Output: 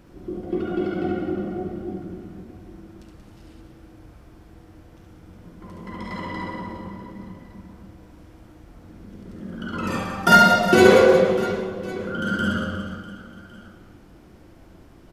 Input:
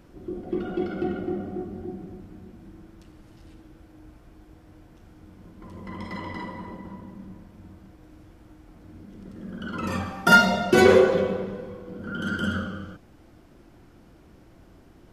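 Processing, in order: reverse bouncing-ball echo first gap 70 ms, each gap 1.6×, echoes 5; trim +1.5 dB

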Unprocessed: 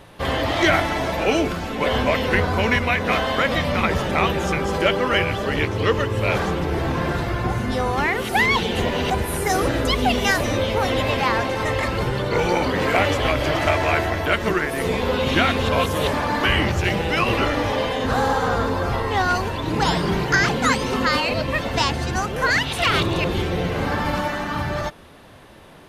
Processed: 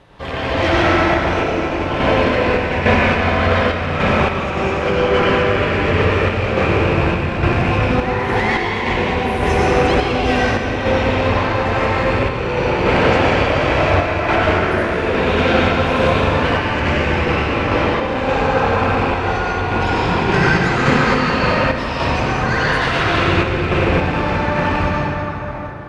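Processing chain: rattle on loud lows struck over -24 dBFS, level -12 dBFS; one-sided clip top -16 dBFS; distance through air 71 m; reverberation RT60 5.2 s, pre-delay 78 ms, DRR -9.5 dB; random-step tremolo; trim -3 dB

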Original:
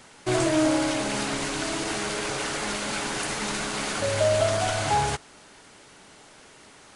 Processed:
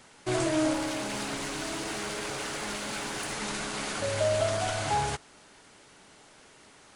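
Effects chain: 0.73–3.33 s: one-sided clip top -27.5 dBFS; trim -4.5 dB

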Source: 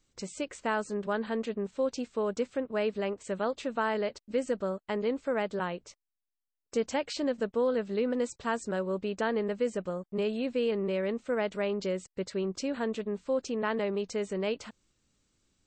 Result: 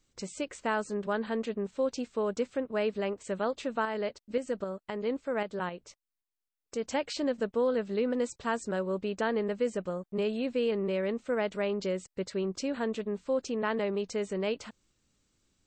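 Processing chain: 3.85–6.89 s: tremolo saw up 3.8 Hz, depth 50%

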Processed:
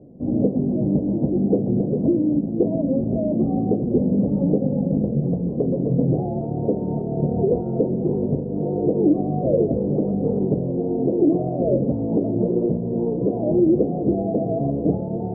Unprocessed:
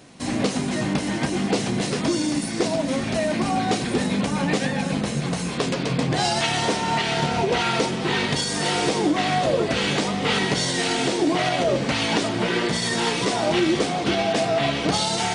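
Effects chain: steep low-pass 570 Hz 36 dB/octave; trim +4.5 dB

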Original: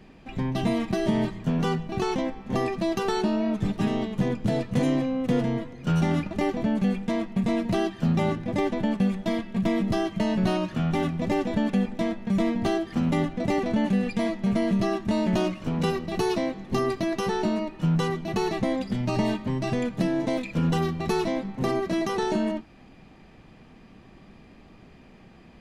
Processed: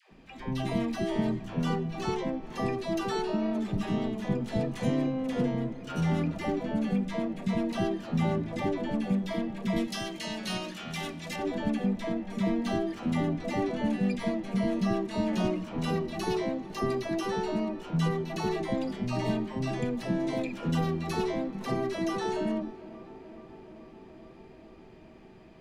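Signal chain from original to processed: 9.76–11.36 s: tilt shelf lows -10 dB, about 1.5 kHz; phase dispersion lows, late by 114 ms, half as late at 550 Hz; tape echo 429 ms, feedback 90%, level -17 dB, low-pass 1.8 kHz; trim -4.5 dB

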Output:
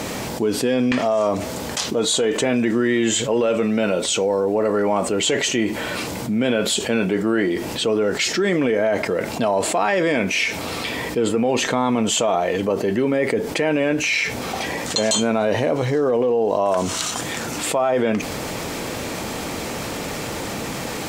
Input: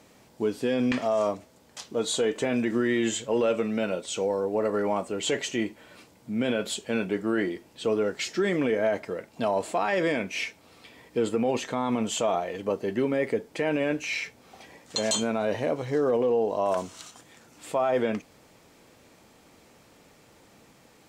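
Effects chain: level flattener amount 70%; trim +4 dB

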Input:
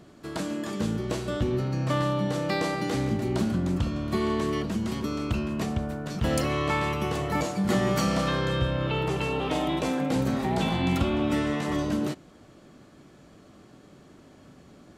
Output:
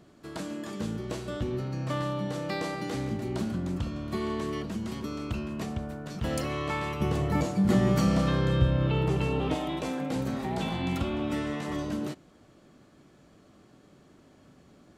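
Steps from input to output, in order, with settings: 7.00–9.55 s: bass shelf 350 Hz +10 dB; trim -5 dB

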